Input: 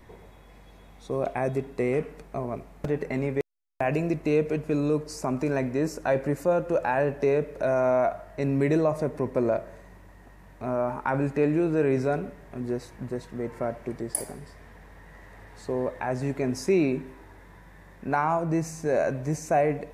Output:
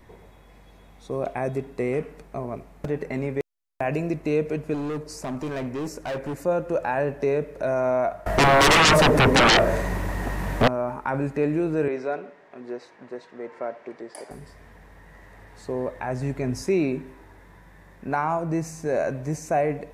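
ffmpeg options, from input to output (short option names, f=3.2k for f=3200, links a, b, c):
-filter_complex "[0:a]asettb=1/sr,asplit=3[a][b][c];[a]atrim=end=4.744[d];[b]atrim=start=4.74:end=6.4,asetpts=PTS-STARTPTS,afade=t=in:d=0.004:c=qsin,afade=t=out:st=1.656:d=0.004:c=qsin,asoftclip=type=hard:threshold=-26.5dB[e];[c]atrim=start=6.396[f];[d][e]acrossfade=d=0.004:c1=hsin:c2=qsin[g];[g][f]acrossfade=d=0.004:c1=qsin:c2=hsin,asettb=1/sr,asplit=3[h][i][j];[h]atrim=end=8.264[k];[i]atrim=start=8.26:end=10.68,asetpts=PTS-STARTPTS,afade=t=in:d=0.004:c=qsin,afade=t=out:st=2.416:d=0.004:c=qsin,aeval=exprs='0.237*sin(PI/2*8.91*val(0)/0.237)':c=same[l];[j]atrim=start=10.676[m];[k][l]acrossfade=d=0.004:c1=hsin:c2=qsin[n];[n][m]acrossfade=d=0.004:c1=qsin:c2=hsin,asettb=1/sr,asplit=3[o][p][q];[o]atrim=end=11.884[r];[p]atrim=start=11.88:end=14.31,asetpts=PTS-STARTPTS,afade=t=in:d=0.004:c=qsin,afade=t=out:st=2.426:d=0.004:c=qsin,highpass=390,lowpass=4.4k[s];[q]atrim=start=14.306[t];[r][s]acrossfade=d=0.004:c1=hsin:c2=qsin[u];[u][t]acrossfade=d=0.004:c1=qsin:c2=hsin,asettb=1/sr,asplit=3[v][w][x];[v]atrim=end=15.864[y];[w]atrim=start=15.86:end=16.63,asetpts=PTS-STARTPTS,afade=t=in:d=0.004:c=qsin,afade=t=out:st=0.766:d=0.004:c=qsin,asubboost=boost=7.5:cutoff=190[z];[x]atrim=start=16.626[aa];[y][z]acrossfade=d=0.004:c1=hsin:c2=qsin[ab];[ab][aa]acrossfade=d=0.004:c1=qsin:c2=hsin"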